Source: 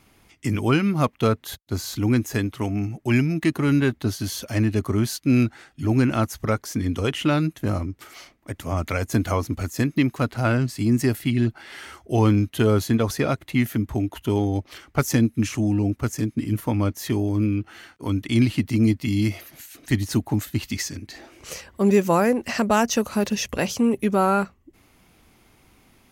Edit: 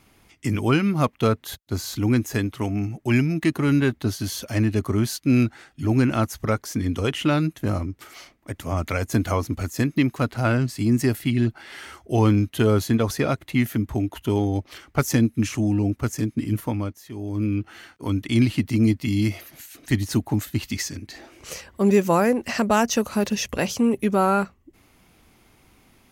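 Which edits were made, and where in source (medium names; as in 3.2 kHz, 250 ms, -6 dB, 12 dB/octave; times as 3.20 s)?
16.57–17.57 s: dip -15 dB, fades 0.47 s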